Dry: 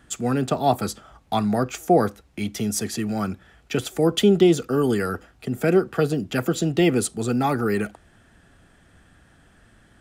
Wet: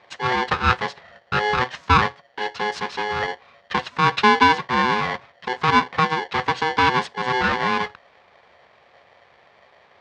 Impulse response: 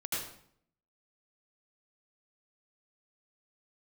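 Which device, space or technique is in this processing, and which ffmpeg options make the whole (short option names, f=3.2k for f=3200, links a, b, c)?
ring modulator pedal into a guitar cabinet: -af "aeval=exprs='val(0)*sgn(sin(2*PI*630*n/s))':c=same,highpass=81,equalizer=f=83:t=q:w=4:g=6,equalizer=f=300:t=q:w=4:g=-10,equalizer=f=1.1k:t=q:w=4:g=4,equalizer=f=1.7k:t=q:w=4:g=6,lowpass=f=4.5k:w=0.5412,lowpass=f=4.5k:w=1.3066"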